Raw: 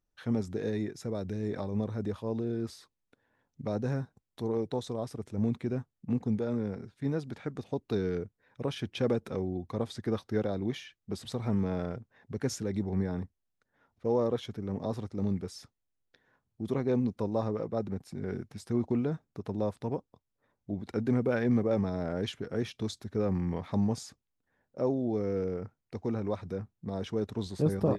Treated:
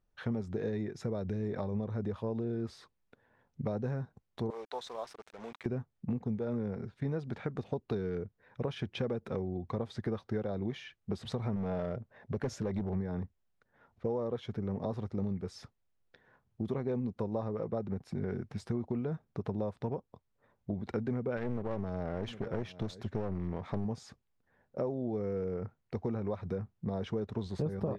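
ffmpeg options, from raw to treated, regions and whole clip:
-filter_complex "[0:a]asettb=1/sr,asplit=3[s0][s1][s2];[s0]atrim=end=4.504[s3];[s1]atrim=start=4.5:end=5.66,asetpts=PTS-STARTPTS,afade=t=in:d=0.004:c=qsin,afade=t=out:st=1.156:d=0.004:c=qsin,highpass=950,acrusher=bits=8:mix=0:aa=0.5[s4];[s2]atrim=start=5.656[s5];[s3][s4]acrossfade=d=0.004:c1=hsin:c2=qsin[s6];[s6][s5]acrossfade=d=0.004:c1=qsin:c2=hsin,asettb=1/sr,asplit=3[s7][s8][s9];[s7]atrim=end=11.564[s10];[s8]atrim=start=11.56:end=12.95,asetpts=PTS-STARTPTS,afade=t=in:d=0.004:c=qsin,afade=t=out:st=1.386:d=0.004:c=qsin,equalizer=f=600:t=o:w=0.31:g=7,volume=20,asoftclip=hard,volume=0.0501[s11];[s9]atrim=start=12.946[s12];[s10][s11]acrossfade=d=0.004:c1=hsin:c2=qsin[s13];[s13][s12]acrossfade=d=0.004:c1=qsin:c2=hsin,asettb=1/sr,asplit=3[s14][s15][s16];[s14]atrim=end=21.374[s17];[s15]atrim=start=21.37:end=23.85,asetpts=PTS-STARTPTS,afade=t=in:d=0.004:c=qsin,afade=t=out:st=2.476:d=0.004:c=qsin,aecho=1:1:757:0.0794,atrim=end_sample=109368,aeval=exprs='clip(val(0),-1,0.0106)':c=same[s18];[s16]atrim=start=23.846[s19];[s17][s18]acrossfade=d=0.004:c1=hsin:c2=qsin[s20];[s20][s19]acrossfade=d=0.004:c1=qsin:c2=hsin,equalizer=f=290:t=o:w=0.27:g=-7.5,acompressor=threshold=0.0141:ratio=6,aemphasis=mode=reproduction:type=75fm,volume=1.78"

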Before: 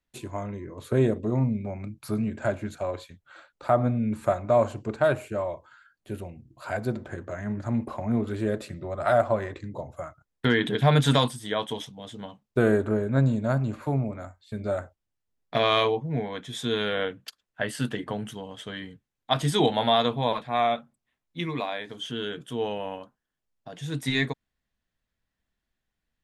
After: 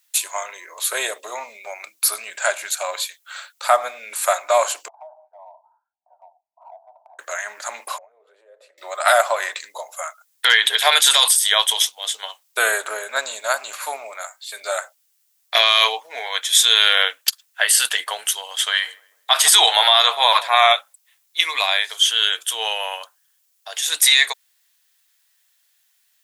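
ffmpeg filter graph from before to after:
-filter_complex "[0:a]asettb=1/sr,asplit=3[s0][s1][s2];[s0]atrim=end=4.884[s3];[s1]atrim=start=4.88:end=7.19,asetpts=PTS-STARTPTS,afade=t=in:d=0.004:c=qsin,afade=t=out:st=2.306:d=0.004:c=qsin,asuperpass=centerf=780:order=8:qfactor=2.5,acompressor=threshold=0.00251:ratio=2.5:attack=3.2:release=140:knee=1:detection=peak[s4];[s2]atrim=start=7.186[s5];[s3][s4]acrossfade=d=0.004:c1=hsin:c2=qsin[s6];[s6][s5]acrossfade=d=0.004:c1=qsin:c2=hsin,asettb=1/sr,asplit=3[s7][s8][s9];[s7]atrim=end=7.984[s10];[s8]atrim=start=7.98:end=8.78,asetpts=PTS-STARTPTS,afade=t=in:d=0.004:c=qsin,afade=t=out:st=0.796:d=0.004:c=qsin,acompressor=threshold=0.0158:ratio=8:attack=3.2:release=140:knee=1:detection=peak,bandpass=f=500:t=q:w=4.8[s11];[s9]atrim=start=8.776[s12];[s10][s11]acrossfade=d=0.004:c1=hsin:c2=qsin[s13];[s13][s12]acrossfade=d=0.004:c1=qsin:c2=hsin,asettb=1/sr,asplit=3[s14][s15][s16];[s14]atrim=end=18.604[s17];[s15]atrim=start=18.6:end=20.73,asetpts=PTS-STARTPTS,afade=t=in:d=0.004:c=qsin,afade=t=out:st=2.126:d=0.004:c=qsin,equalizer=f=1200:w=0.74:g=5.5,asplit=2[s18][s19];[s19]adelay=149,lowpass=f=910:p=1,volume=0.119,asplit=2[s20][s21];[s21]adelay=149,lowpass=f=910:p=1,volume=0.55,asplit=2[s22][s23];[s23]adelay=149,lowpass=f=910:p=1,volume=0.55,asplit=2[s24][s25];[s25]adelay=149,lowpass=f=910:p=1,volume=0.55,asplit=2[s26][s27];[s27]adelay=149,lowpass=f=910:p=1,volume=0.55[s28];[s18][s20][s22][s24][s26][s28]amix=inputs=6:normalize=0,atrim=end_sample=93933[s29];[s16]atrim=start=20.726[s30];[s17][s29]acrossfade=d=0.004:c1=hsin:c2=qsin[s31];[s31][s30]acrossfade=d=0.004:c1=qsin:c2=hsin,highpass=f=590:w=0.5412,highpass=f=590:w=1.3066,aderivative,alimiter=level_in=25.1:limit=0.891:release=50:level=0:latency=1,volume=0.891"

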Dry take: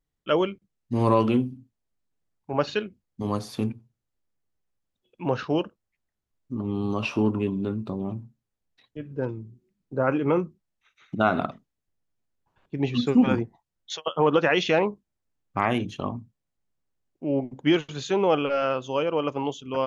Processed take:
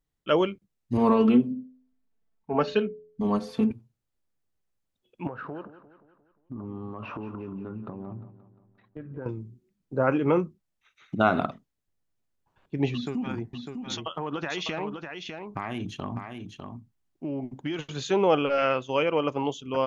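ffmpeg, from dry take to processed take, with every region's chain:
-filter_complex "[0:a]asettb=1/sr,asplit=3[s0][s1][s2];[s0]atrim=end=0.974[s3];[s1]atrim=start=0.97:end=3.71,asetpts=PTS-STARTPTS,afade=t=in:d=0.004:c=qsin,afade=t=out:st=2.736:d=0.004:c=qsin,lowpass=f=2000:p=1,aecho=1:1:4.5:0.88,atrim=end_sample=120834,bandreject=f=85.27:t=h:w=4,bandreject=f=170.54:t=h:w=4,bandreject=f=255.81:t=h:w=4,bandreject=f=341.08:t=h:w=4,bandreject=f=426.35:t=h:w=4,bandreject=f=511.62:t=h:w=4,bandreject=f=596.89:t=h:w=4[s4];[s2]atrim=start=3.706[s5];[s3][s4]acrossfade=d=0.004:c1=hsin:c2=qsin[s6];[s6][s5]acrossfade=d=0.004:c1=qsin:c2=hsin,asettb=1/sr,asplit=3[s7][s8][s9];[s7]atrim=end=5.274[s10];[s8]atrim=start=5.27:end=9.26,asetpts=PTS-STARTPTS,afade=t=in:d=0.004:c=qsin,afade=t=out:st=3.986:d=0.004:c=qsin,lowpass=f=1400:t=q:w=1.9,acompressor=threshold=0.0224:ratio=8:attack=3.2:release=140:knee=1:detection=peak,aecho=1:1:176|352|528|704|880:0.2|0.106|0.056|0.0297|0.0157,atrim=end_sample=175959[s11];[s9]atrim=start=9.256[s12];[s10][s11]acrossfade=d=0.004:c1=hsin:c2=qsin[s13];[s13][s12]acrossfade=d=0.004:c1=qsin:c2=hsin,asettb=1/sr,asplit=3[s14][s15][s16];[s14]atrim=end=12.934[s17];[s15]atrim=start=12.93:end=17.79,asetpts=PTS-STARTPTS,afade=t=in:d=0.004:c=qsin,afade=t=out:st=4.856:d=0.004:c=qsin,equalizer=f=510:t=o:w=0.36:g=-8.5,acompressor=threshold=0.0447:ratio=8:attack=3.2:release=140:knee=1:detection=peak,aecho=1:1:601:0.473,atrim=end_sample=214326[s18];[s16]atrim=start=17.786[s19];[s17][s18]acrossfade=d=0.004:c1=hsin:c2=qsin[s20];[s20][s19]acrossfade=d=0.004:c1=qsin:c2=hsin,asettb=1/sr,asplit=3[s21][s22][s23];[s21]atrim=end=18.584[s24];[s22]atrim=start=18.58:end=19.19,asetpts=PTS-STARTPTS,afade=t=in:d=0.004:c=qsin,afade=t=out:st=0.606:d=0.004:c=qsin,agate=range=0.0224:threshold=0.0158:ratio=3:release=100:detection=peak,equalizer=f=2100:w=2.5:g=9.5[s25];[s23]atrim=start=19.186[s26];[s24][s25]acrossfade=d=0.004:c1=hsin:c2=qsin[s27];[s27][s26]acrossfade=d=0.004:c1=qsin:c2=hsin"

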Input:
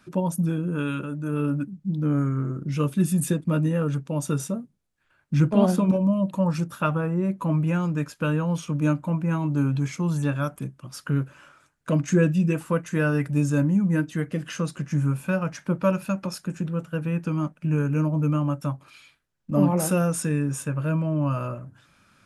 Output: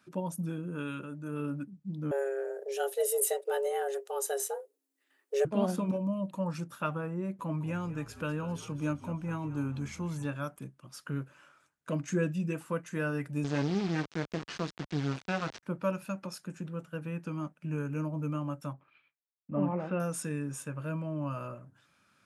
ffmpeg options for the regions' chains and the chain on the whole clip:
-filter_complex "[0:a]asettb=1/sr,asplit=3[s0][s1][s2];[s0]atrim=end=2.114[s3];[s1]atrim=start=2.11:end=5.45,asetpts=PTS-STARTPTS,afade=t=in:d=0.004:c=qsin,afade=t=out:st=3.336:d=0.004:c=qsin,afreqshift=270,aemphasis=mode=production:type=50kf[s4];[s2]atrim=start=5.446[s5];[s3][s4]acrossfade=d=0.004:c1=hsin:c2=qsin[s6];[s6][s5]acrossfade=d=0.004:c1=qsin:c2=hsin,asettb=1/sr,asplit=3[s7][s8][s9];[s7]atrim=end=7.394[s10];[s8]atrim=start=7.39:end=10.26,asetpts=PTS-STARTPTS,afade=t=in:d=0.004:c=qsin,afade=t=out:st=2.866:d=0.004:c=qsin,acompressor=mode=upward:threshold=0.0316:ratio=2.5:attack=3.2:release=140:knee=2.83:detection=peak,asplit=7[s11][s12][s13][s14][s15][s16][s17];[s12]adelay=199,afreqshift=-54,volume=0.178[s18];[s13]adelay=398,afreqshift=-108,volume=0.101[s19];[s14]adelay=597,afreqshift=-162,volume=0.0575[s20];[s15]adelay=796,afreqshift=-216,volume=0.0331[s21];[s16]adelay=995,afreqshift=-270,volume=0.0188[s22];[s17]adelay=1194,afreqshift=-324,volume=0.0107[s23];[s11][s18][s19][s20][s21][s22][s23]amix=inputs=7:normalize=0,atrim=end_sample=126567[s24];[s9]atrim=start=10.256[s25];[s10][s24]acrossfade=d=0.004:c1=hsin:c2=qsin[s26];[s26][s25]acrossfade=d=0.004:c1=qsin:c2=hsin,asettb=1/sr,asplit=3[s27][s28][s29];[s27]atrim=end=13.444[s30];[s28]atrim=start=13.44:end=15.63,asetpts=PTS-STARTPTS,afade=t=in:d=0.004:c=qsin,afade=t=out:st=2.186:d=0.004:c=qsin,acrusher=bits=3:dc=4:mix=0:aa=0.000001,acontrast=53,lowpass=f=5800:w=0.5412,lowpass=f=5800:w=1.3066[s31];[s29]atrim=start=15.626[s32];[s30][s31]acrossfade=d=0.004:c1=hsin:c2=qsin[s33];[s33][s32]acrossfade=d=0.004:c1=qsin:c2=hsin,asettb=1/sr,asplit=3[s34][s35][s36];[s34]atrim=end=18.734[s37];[s35]atrim=start=18.73:end=20,asetpts=PTS-STARTPTS,afade=t=in:d=0.004:c=qsin,afade=t=out:st=1.266:d=0.004:c=qsin,lowpass=f=2700:w=0.5412,lowpass=f=2700:w=1.3066,agate=range=0.0224:threshold=0.00355:ratio=3:release=100:detection=peak[s38];[s36]atrim=start=19.996[s39];[s37][s38]acrossfade=d=0.004:c1=hsin:c2=qsin[s40];[s40][s39]acrossfade=d=0.004:c1=qsin:c2=hsin,highpass=60,lowshelf=f=160:g=-7,volume=0.398"

